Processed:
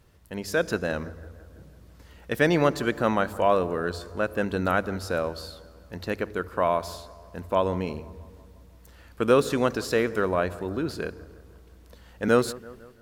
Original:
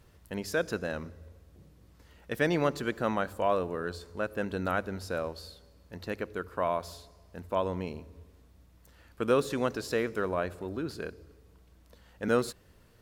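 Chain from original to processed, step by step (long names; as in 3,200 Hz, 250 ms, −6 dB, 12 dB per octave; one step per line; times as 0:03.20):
bucket-brigade delay 167 ms, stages 2,048, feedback 61%, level −19.5 dB
automatic gain control gain up to 6 dB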